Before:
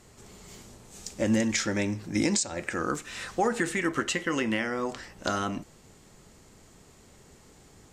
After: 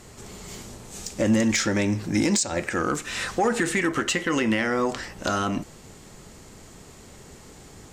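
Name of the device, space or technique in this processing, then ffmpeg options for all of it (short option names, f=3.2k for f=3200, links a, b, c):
soft clipper into limiter: -af "asoftclip=type=tanh:threshold=-17dB,alimiter=limit=-22.5dB:level=0:latency=1:release=171,volume=8.5dB"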